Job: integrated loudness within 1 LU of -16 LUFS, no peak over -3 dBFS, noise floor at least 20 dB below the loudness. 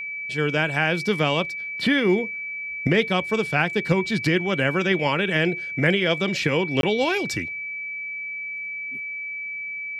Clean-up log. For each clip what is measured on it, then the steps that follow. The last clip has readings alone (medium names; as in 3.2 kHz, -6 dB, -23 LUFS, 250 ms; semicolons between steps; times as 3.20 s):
dropouts 1; longest dropout 22 ms; steady tone 2.3 kHz; tone level -29 dBFS; loudness -23.0 LUFS; peak level -5.5 dBFS; loudness target -16.0 LUFS
-> interpolate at 6.81 s, 22 ms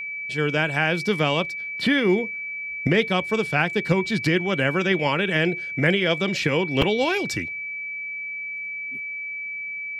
dropouts 0; steady tone 2.3 kHz; tone level -29 dBFS
-> band-stop 2.3 kHz, Q 30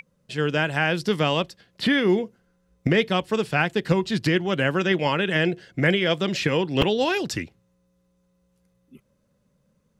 steady tone not found; loudness -23.0 LUFS; peak level -6.0 dBFS; loudness target -16.0 LUFS
-> trim +7 dB; peak limiter -3 dBFS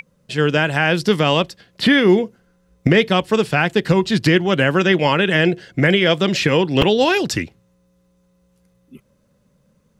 loudness -16.5 LUFS; peak level -3.0 dBFS; noise floor -61 dBFS